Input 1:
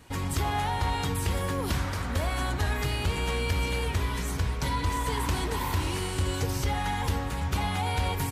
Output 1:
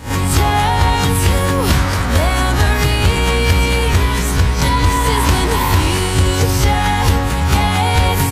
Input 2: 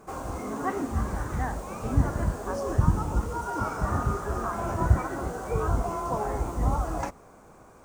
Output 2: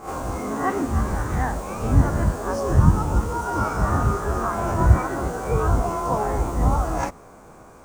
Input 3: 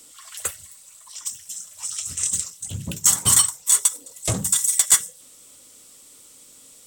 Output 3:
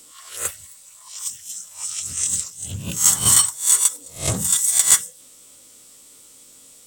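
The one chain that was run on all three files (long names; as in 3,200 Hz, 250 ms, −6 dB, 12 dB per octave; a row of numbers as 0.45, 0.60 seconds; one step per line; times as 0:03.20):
peak hold with a rise ahead of every peak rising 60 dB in 0.34 s
normalise the peak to −2 dBFS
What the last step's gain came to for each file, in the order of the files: +13.5, +5.0, −0.5 decibels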